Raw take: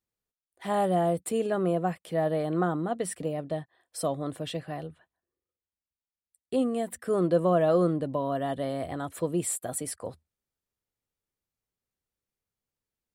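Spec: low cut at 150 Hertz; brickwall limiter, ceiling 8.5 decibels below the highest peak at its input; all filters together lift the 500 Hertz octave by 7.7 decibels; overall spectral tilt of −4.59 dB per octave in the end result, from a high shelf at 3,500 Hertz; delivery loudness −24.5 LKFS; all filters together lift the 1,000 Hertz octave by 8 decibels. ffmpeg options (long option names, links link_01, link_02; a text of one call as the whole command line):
ffmpeg -i in.wav -af "highpass=150,equalizer=frequency=500:width_type=o:gain=7,equalizer=frequency=1000:width_type=o:gain=7.5,highshelf=frequency=3500:gain=8.5,alimiter=limit=-14dB:level=0:latency=1" out.wav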